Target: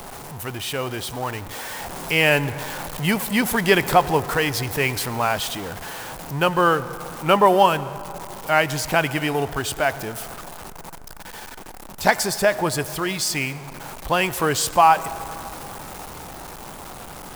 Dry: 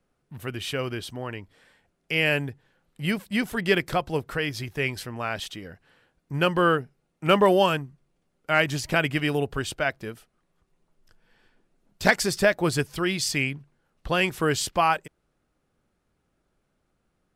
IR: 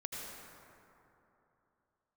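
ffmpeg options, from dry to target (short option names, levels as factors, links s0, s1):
-filter_complex "[0:a]aeval=exprs='val(0)+0.5*0.0251*sgn(val(0))':c=same,equalizer=f=870:t=o:w=0.85:g=10.5,dynaudnorm=f=200:g=17:m=3.76,highshelf=f=7000:g=9.5,asplit=2[s0][s1];[1:a]atrim=start_sample=2205[s2];[s1][s2]afir=irnorm=-1:irlink=0,volume=0.224[s3];[s0][s3]amix=inputs=2:normalize=0,volume=0.668"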